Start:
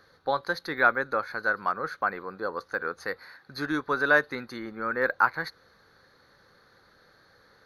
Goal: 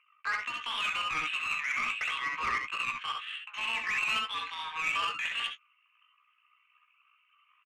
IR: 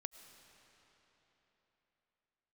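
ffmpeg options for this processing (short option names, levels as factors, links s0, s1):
-filter_complex "[0:a]anlmdn=0.00251,asplit=2[s0][s1];[s1]acompressor=threshold=0.0224:ratio=16,volume=1.33[s2];[s0][s2]amix=inputs=2:normalize=0,alimiter=limit=0.15:level=0:latency=1:release=24,highpass=f=530:t=q:w=0.5412,highpass=f=530:t=q:w=1.307,lowpass=f=3000:t=q:w=0.5176,lowpass=f=3000:t=q:w=0.7071,lowpass=f=3000:t=q:w=1.932,afreqshift=310,asoftclip=type=tanh:threshold=0.0211,asetrate=64194,aresample=44100,atempo=0.686977,asplit=2[s3][s4];[s4]adelay=17,volume=0.398[s5];[s3][s5]amix=inputs=2:normalize=0,aecho=1:1:65|78:0.631|0.398,adynamicsmooth=sensitivity=2.5:basefreq=2400,volume=2"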